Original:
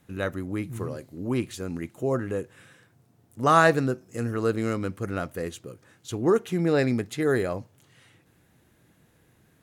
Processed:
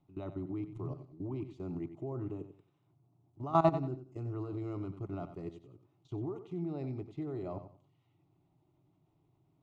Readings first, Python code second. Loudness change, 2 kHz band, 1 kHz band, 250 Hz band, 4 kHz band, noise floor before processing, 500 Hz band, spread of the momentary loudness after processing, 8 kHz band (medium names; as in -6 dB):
-11.5 dB, -27.0 dB, -10.5 dB, -10.5 dB, -21.0 dB, -63 dBFS, -12.5 dB, 14 LU, under -30 dB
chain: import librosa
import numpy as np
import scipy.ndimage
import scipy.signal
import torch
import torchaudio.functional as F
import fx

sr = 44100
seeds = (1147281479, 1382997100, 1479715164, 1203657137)

p1 = fx.level_steps(x, sr, step_db=17)
p2 = fx.spacing_loss(p1, sr, db_at_10k=35)
p3 = fx.fixed_phaser(p2, sr, hz=330.0, stages=8)
y = p3 + fx.echo_feedback(p3, sr, ms=92, feedback_pct=27, wet_db=-11.0, dry=0)